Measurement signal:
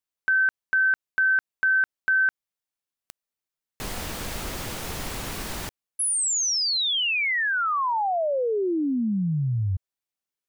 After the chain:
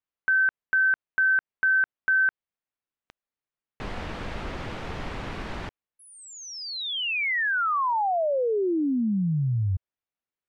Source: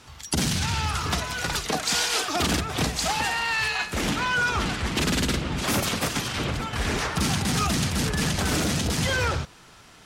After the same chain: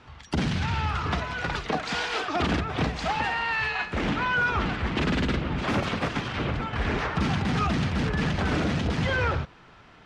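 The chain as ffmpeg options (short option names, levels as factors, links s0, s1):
-af "lowpass=2600"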